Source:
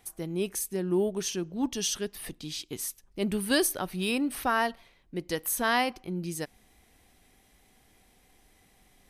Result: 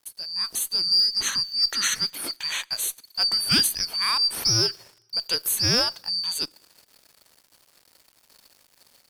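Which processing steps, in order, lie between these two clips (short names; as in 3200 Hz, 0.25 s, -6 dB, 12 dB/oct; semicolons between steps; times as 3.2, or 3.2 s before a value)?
four-band scrambler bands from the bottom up 2341; in parallel at -1 dB: compressor, threshold -36 dBFS, peak gain reduction 15 dB; on the sum: sample gate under -50 dBFS; AGC gain up to 8 dB; on a send at -22 dB: reverb, pre-delay 3 ms; on the sum: added harmonics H 2 -18 dB, 8 -31 dB, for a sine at -3 dBFS; gain -4 dB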